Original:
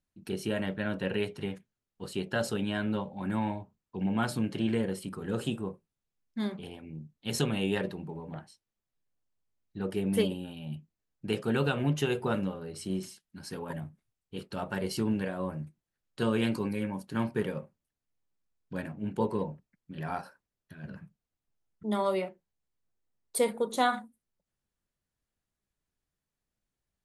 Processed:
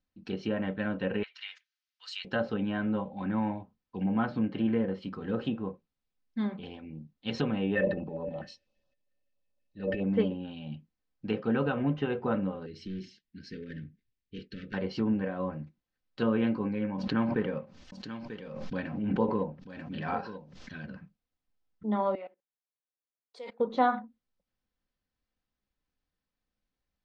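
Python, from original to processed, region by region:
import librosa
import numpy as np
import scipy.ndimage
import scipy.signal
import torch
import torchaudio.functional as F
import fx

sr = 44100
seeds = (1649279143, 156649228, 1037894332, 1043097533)

y = fx.chain(x, sr, fx.highpass(hz=1400.0, slope=24),
    fx.high_shelf(hz=2600.0, db=8.5), at=(1.23, 2.25))
y = fx.chain(y, sr, fx.transient(attack_db=-9, sustain_db=10),
    fx.small_body(hz=(570.0, 1800.0, 2600.0), ring_ms=90, db=18),
    fx.filter_held_notch(hz=12.0, low_hz=900.0, high_hz=2000.0), at=(7.75, 10.04))
y = fx.chain(y, sr, fx.clip_hard(threshold_db=-33.0),
    fx.cheby1_bandstop(low_hz=430.0, high_hz=1700.0, order=3),
    fx.air_absorb(metres=74.0), at=(12.66, 14.74))
y = fx.chain(y, sr, fx.high_shelf(hz=2800.0, db=7.5),
    fx.echo_single(ms=940, db=-12.5),
    fx.pre_swell(db_per_s=38.0), at=(16.98, 20.86))
y = fx.chain(y, sr, fx.highpass(hz=410.0, slope=12),
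    fx.level_steps(step_db=21), at=(22.15, 23.6))
y = scipy.signal.sosfilt(scipy.signal.cheby2(4, 40, 9600.0, 'lowpass', fs=sr, output='sos'), y)
y = fx.env_lowpass_down(y, sr, base_hz=1800.0, full_db=-27.0)
y = y + 0.38 * np.pad(y, (int(3.9 * sr / 1000.0), 0))[:len(y)]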